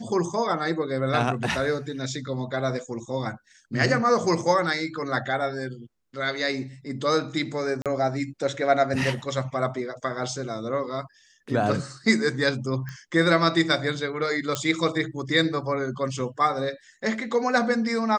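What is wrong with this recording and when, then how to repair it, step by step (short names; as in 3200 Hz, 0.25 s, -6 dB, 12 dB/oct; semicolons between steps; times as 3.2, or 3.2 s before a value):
7.82–7.86 gap 37 ms
12.89 pop -23 dBFS
14.55 pop -10 dBFS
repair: de-click; interpolate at 7.82, 37 ms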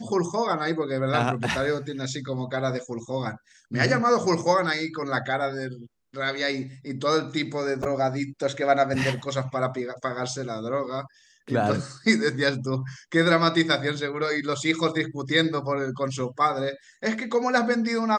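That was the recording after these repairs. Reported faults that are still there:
none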